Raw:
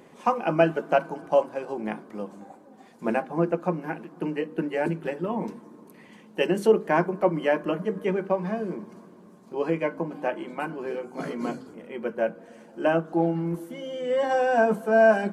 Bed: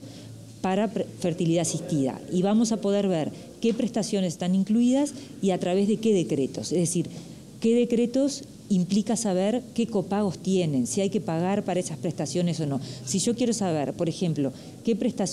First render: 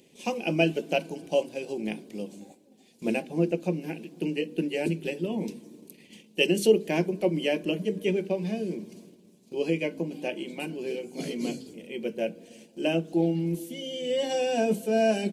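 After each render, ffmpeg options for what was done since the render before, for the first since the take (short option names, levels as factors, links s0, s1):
-af "firequalizer=gain_entry='entry(400,0);entry(1200,-21);entry(2500,7);entry(3600,9)':delay=0.05:min_phase=1,agate=range=0.447:threshold=0.00355:ratio=16:detection=peak"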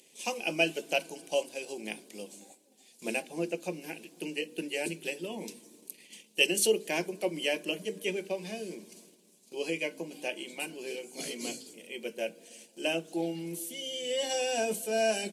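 -af "highpass=f=810:p=1,equalizer=f=9300:t=o:w=1.4:g=8.5"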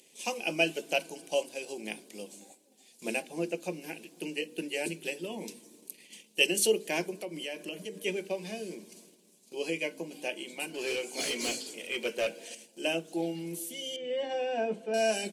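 -filter_complex "[0:a]asettb=1/sr,asplit=3[s0][s1][s2];[s0]atrim=end=7.114[s3];[s1]atrim=start=7.11:end=7.96,asetpts=PTS-STARTPTS,afade=t=in:d=0.004:c=qsin,afade=t=out:st=0.846:d=0.004:c=qsin,acompressor=threshold=0.0158:ratio=3:attack=3.2:release=140:knee=1:detection=peak[s4];[s2]atrim=start=7.956[s5];[s3][s4]acrossfade=d=0.004:c1=hsin:c2=qsin[s6];[s6][s5]acrossfade=d=0.004:c1=qsin:c2=hsin,asettb=1/sr,asplit=3[s7][s8][s9];[s7]atrim=end=10.744[s10];[s8]atrim=start=10.74:end=12.55,asetpts=PTS-STARTPTS,afade=t=in:d=0.004:c=qsin,afade=t=out:st=1.806:d=0.004:c=qsin,asplit=2[s11][s12];[s12]highpass=f=720:p=1,volume=7.08,asoftclip=type=tanh:threshold=0.0891[s13];[s11][s13]amix=inputs=2:normalize=0,lowpass=f=5000:p=1,volume=0.501[s14];[s9]atrim=start=12.546[s15];[s10][s14]acrossfade=d=0.004:c1=hsin:c2=qsin[s16];[s16][s15]acrossfade=d=0.004:c1=qsin:c2=hsin,asettb=1/sr,asplit=3[s17][s18][s19];[s17]atrim=end=13.964[s20];[s18]atrim=start=13.96:end=14.94,asetpts=PTS-STARTPTS,afade=t=in:d=0.004:c=qsin,afade=t=out:st=0.976:d=0.004:c=qsin,lowpass=1900[s21];[s19]atrim=start=14.936[s22];[s20][s21]acrossfade=d=0.004:c1=hsin:c2=qsin[s23];[s23][s22]acrossfade=d=0.004:c1=qsin:c2=hsin"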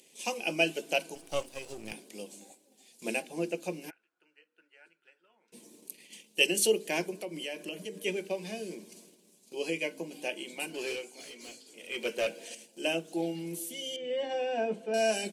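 -filter_complex "[0:a]asettb=1/sr,asplit=3[s0][s1][s2];[s0]atrim=end=1.154[s3];[s1]atrim=start=1.15:end=1.93,asetpts=PTS-STARTPTS,afade=t=in:d=0.004:c=qsin,afade=t=out:st=0.776:d=0.004:c=qsin,aeval=exprs='if(lt(val(0),0),0.251*val(0),val(0))':c=same[s4];[s2]atrim=start=1.926[s5];[s3][s4]acrossfade=d=0.004:c1=hsin:c2=qsin[s6];[s6][s5]acrossfade=d=0.004:c1=qsin:c2=hsin,asplit=3[s7][s8][s9];[s7]afade=t=out:st=3.89:d=0.02[s10];[s8]bandpass=f=1400:t=q:w=15,afade=t=in:st=3.89:d=0.02,afade=t=out:st=5.52:d=0.02[s11];[s9]afade=t=in:st=5.52:d=0.02[s12];[s10][s11][s12]amix=inputs=3:normalize=0,asplit=3[s13][s14][s15];[s13]atrim=end=11.19,asetpts=PTS-STARTPTS,afade=t=out:st=10.77:d=0.42:silence=0.188365[s16];[s14]atrim=start=11.19:end=11.66,asetpts=PTS-STARTPTS,volume=0.188[s17];[s15]atrim=start=11.66,asetpts=PTS-STARTPTS,afade=t=in:d=0.42:silence=0.188365[s18];[s16][s17][s18]concat=n=3:v=0:a=1"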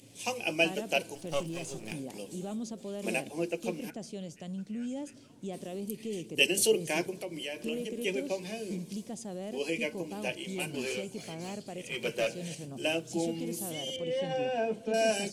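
-filter_complex "[1:a]volume=0.168[s0];[0:a][s0]amix=inputs=2:normalize=0"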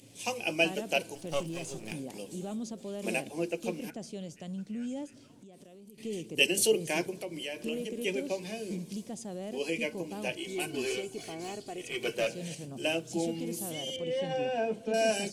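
-filter_complex "[0:a]asettb=1/sr,asplit=3[s0][s1][s2];[s0]atrim=end=5.064[s3];[s1]atrim=start=5.06:end=5.98,asetpts=PTS-STARTPTS,afade=t=in:d=0.004:c=qsin,afade=t=out:st=0.916:d=0.004:c=qsin,acompressor=threshold=0.00355:ratio=10:attack=3.2:release=140:knee=1:detection=peak[s4];[s2]atrim=start=5.976[s5];[s3][s4]acrossfade=d=0.004:c1=hsin:c2=qsin[s6];[s6][s5]acrossfade=d=0.004:c1=qsin:c2=hsin,asettb=1/sr,asplit=3[s7][s8][s9];[s7]atrim=end=10.374[s10];[s8]atrim=start=10.37:end=12.14,asetpts=PTS-STARTPTS,afade=t=in:d=0.004:c=qsin,afade=t=out:st=1.766:d=0.004:c=qsin,aecho=1:1:2.7:0.59,atrim=end_sample=78057[s11];[s9]atrim=start=12.136[s12];[s10][s11]acrossfade=d=0.004:c1=hsin:c2=qsin[s13];[s13][s12]acrossfade=d=0.004:c1=qsin:c2=hsin"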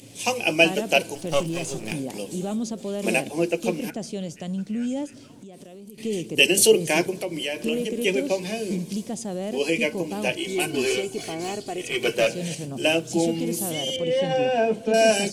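-af "volume=2.99,alimiter=limit=0.708:level=0:latency=1"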